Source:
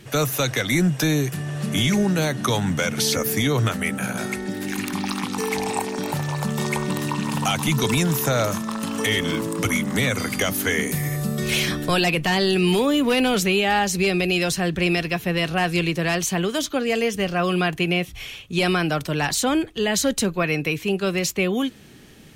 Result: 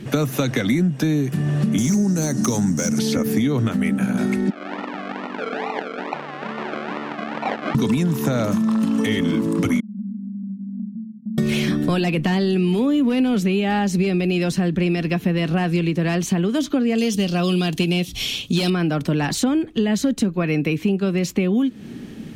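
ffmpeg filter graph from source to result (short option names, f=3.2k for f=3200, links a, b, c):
-filter_complex "[0:a]asettb=1/sr,asplit=3[a][b][c];[a]atrim=end=1.784[d];[b]atrim=start=1.78:end=2.99,asetpts=PTS-STARTPTS,afade=t=in:d=0.004:c=qsin,afade=t=out:st=1.206:d=0.004:c=qsin,highshelf=f=4.4k:t=q:w=3:g=11,volume=11dB,asoftclip=hard,volume=-11dB[e];[c]atrim=start=2.986[f];[d][e]acrossfade=d=0.004:c1=hsin:c2=qsin[g];[g][f]acrossfade=d=0.004:c1=qsin:c2=hsin,asettb=1/sr,asplit=3[h][i][j];[h]atrim=end=4.504[k];[i]atrim=start=4.5:end=7.75,asetpts=PTS-STARTPTS,afade=t=in:d=0.004:c=qsin,afade=t=out:st=3.246:d=0.004:c=qsin,acrusher=samples=38:mix=1:aa=0.000001:lfo=1:lforange=22.8:lforate=2.3,highpass=790,lowpass=2.5k[l];[j]atrim=start=7.746[m];[k][l]acrossfade=d=0.004:c1=hsin:c2=qsin[n];[n][m]acrossfade=d=0.004:c1=qsin:c2=hsin,asettb=1/sr,asplit=3[o][p][q];[o]atrim=end=9.804[r];[p]atrim=start=9.8:end=11.38,asetpts=PTS-STARTPTS,afade=t=in:d=0.004:c=qsin,afade=t=out:st=1.576:d=0.004:c=qsin,agate=range=-33dB:threshold=-22dB:ratio=3:release=100:detection=peak,asuperpass=centerf=210:order=8:qfactor=4.8,acompressor=threshold=-44dB:ratio=4:attack=3.2:release=140:knee=1:detection=peak[s];[q]atrim=start=11.376[t];[r][s]acrossfade=d=0.004:c1=hsin:c2=qsin[u];[u][t]acrossfade=d=0.004:c1=qsin:c2=hsin,asettb=1/sr,asplit=3[v][w][x];[v]atrim=end=16.984[y];[w]atrim=start=16.98:end=18.7,asetpts=PTS-STARTPTS,afade=t=in:d=0.004:c=qsin,afade=t=out:st=1.716:d=0.004:c=qsin,highshelf=f=2.7k:t=q:w=1.5:g=12,asoftclip=type=hard:threshold=-12.5dB[z];[x]atrim=start=18.696[aa];[y][z]acrossfade=d=0.004:c1=hsin:c2=qsin[ab];[ab][aa]acrossfade=d=0.004:c1=qsin:c2=hsin,equalizer=f=230:w=1.1:g=13.5,acompressor=threshold=-21dB:ratio=6,highshelf=f=5.9k:g=-7.5,volume=4dB"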